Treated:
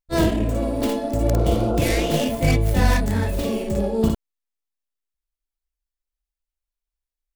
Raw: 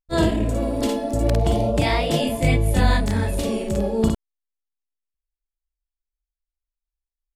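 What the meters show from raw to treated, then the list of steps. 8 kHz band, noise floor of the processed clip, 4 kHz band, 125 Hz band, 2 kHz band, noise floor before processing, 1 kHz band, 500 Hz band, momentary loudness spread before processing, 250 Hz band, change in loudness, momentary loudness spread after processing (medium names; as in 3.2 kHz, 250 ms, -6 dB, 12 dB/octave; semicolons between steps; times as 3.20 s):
+1.0 dB, under -85 dBFS, -1.5 dB, 0.0 dB, -0.5 dB, under -85 dBFS, -1.0 dB, 0.0 dB, 5 LU, +0.5 dB, 0.0 dB, 5 LU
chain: tracing distortion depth 0.39 ms; spectral replace 1.36–2.06 s, 290–1500 Hz after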